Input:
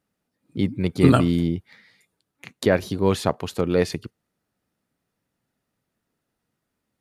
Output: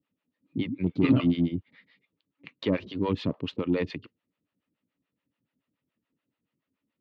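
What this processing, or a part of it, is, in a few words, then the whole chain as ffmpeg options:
guitar amplifier with harmonic tremolo: -filter_complex "[0:a]acrossover=split=520[link_01][link_02];[link_01]aeval=exprs='val(0)*(1-1/2+1/2*cos(2*PI*7*n/s))':channel_layout=same[link_03];[link_02]aeval=exprs='val(0)*(1-1/2-1/2*cos(2*PI*7*n/s))':channel_layout=same[link_04];[link_03][link_04]amix=inputs=2:normalize=0,asoftclip=type=tanh:threshold=-15.5dB,highpass=87,equalizer=frequency=280:width_type=q:width=4:gain=8,equalizer=frequency=410:width_type=q:width=4:gain=-3,equalizer=frequency=750:width_type=q:width=4:gain=-9,equalizer=frequency=1500:width_type=q:width=4:gain=-6,equalizer=frequency=2800:width_type=q:width=4:gain=4,lowpass=frequency=3600:width=0.5412,lowpass=frequency=3600:width=1.3066"

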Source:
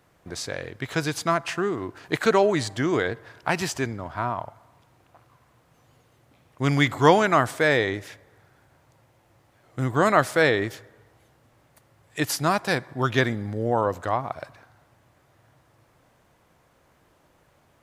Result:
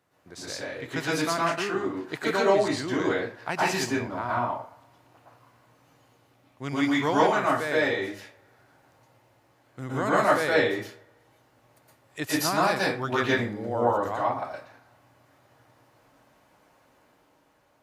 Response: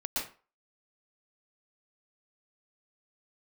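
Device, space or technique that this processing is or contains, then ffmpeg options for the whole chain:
far laptop microphone: -filter_complex "[1:a]atrim=start_sample=2205[link_01];[0:a][link_01]afir=irnorm=-1:irlink=0,highpass=frequency=130:poles=1,dynaudnorm=framelen=150:gausssize=11:maxgain=4dB,volume=-7dB"

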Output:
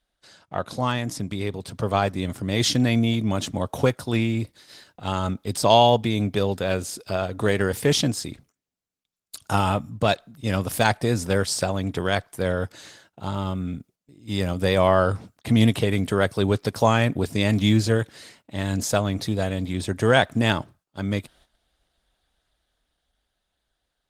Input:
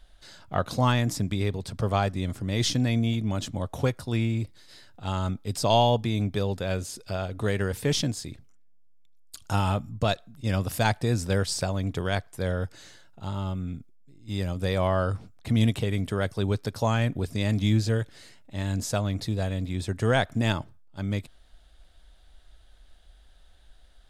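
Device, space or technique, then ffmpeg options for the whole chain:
video call: -af "highpass=frequency=170:poles=1,dynaudnorm=framelen=220:gausssize=17:maxgain=9dB,agate=range=-12dB:threshold=-53dB:ratio=16:detection=peak" -ar 48000 -c:a libopus -b:a 20k

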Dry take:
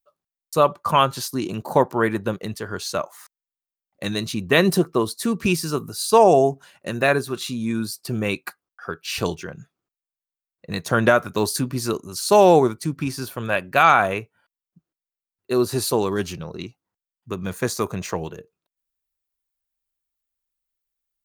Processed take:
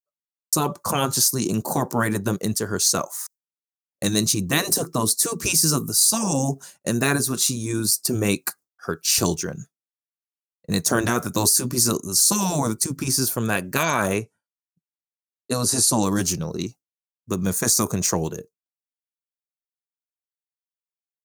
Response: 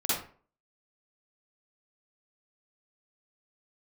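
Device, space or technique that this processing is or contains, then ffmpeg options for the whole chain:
over-bright horn tweeter: -filter_complex "[0:a]highshelf=frequency=4400:width_type=q:width=1.5:gain=12.5,alimiter=limit=-7.5dB:level=0:latency=1:release=49,agate=range=-33dB:threshold=-38dB:ratio=3:detection=peak,asettb=1/sr,asplit=3[link_01][link_02][link_03];[link_01]atrim=end=14.164[link_04];[link_02]atrim=start=14.16:end=16.03,asetpts=PTS-STARTPTS,afade=type=in:duration=0.004:curve=qsin,afade=type=out:start_time=1.866:duration=0.004:curve=qsin,lowpass=frequency=11000:width=0.5412,lowpass=frequency=11000:width=1.3066[link_05];[link_03]atrim=start=16.026[link_06];[link_04][link_05]acrossfade=duration=0.004:curve1=hsin:curve2=qsin[link_07];[link_07][link_06]acrossfade=duration=0.004:curve1=qsin:curve2=hsin,afftfilt=real='re*lt(hypot(re,im),0.501)':imag='im*lt(hypot(re,im),0.501)':win_size=1024:overlap=0.75,equalizer=frequency=220:width_type=o:width=2.3:gain=5.5,volume=1dB"

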